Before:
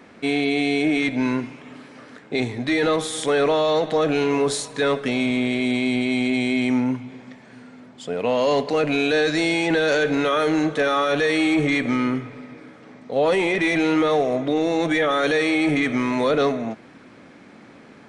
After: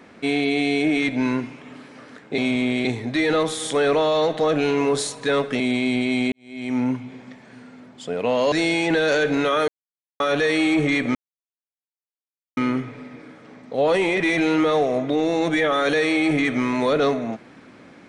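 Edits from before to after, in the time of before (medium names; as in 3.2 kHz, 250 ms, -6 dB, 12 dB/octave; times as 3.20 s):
5.13–5.60 s: move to 2.38 s
6.32–6.83 s: fade in quadratic
8.52–9.32 s: delete
10.48–11.00 s: mute
11.95 s: insert silence 1.42 s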